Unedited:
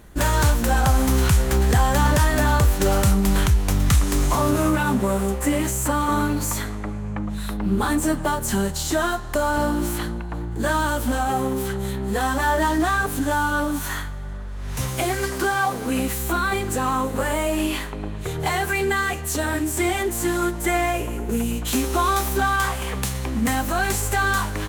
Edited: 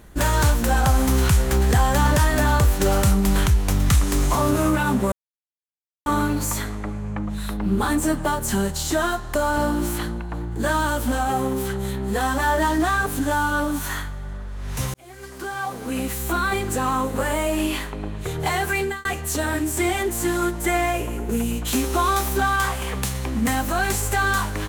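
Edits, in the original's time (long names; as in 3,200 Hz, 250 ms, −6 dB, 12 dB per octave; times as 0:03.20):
0:05.12–0:06.06: silence
0:14.94–0:16.41: fade in
0:18.79–0:19.05: fade out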